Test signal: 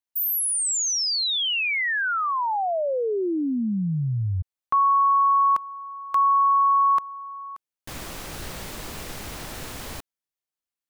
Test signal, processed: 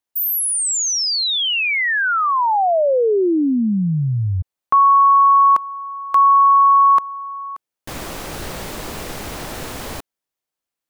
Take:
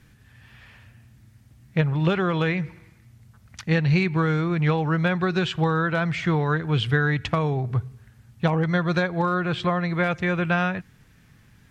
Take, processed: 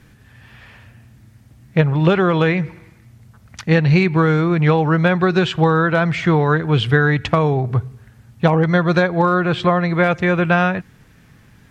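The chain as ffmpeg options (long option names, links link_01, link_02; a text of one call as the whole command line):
ffmpeg -i in.wav -af "equalizer=frequency=510:width_type=o:width=2.8:gain=4.5,volume=4.5dB" out.wav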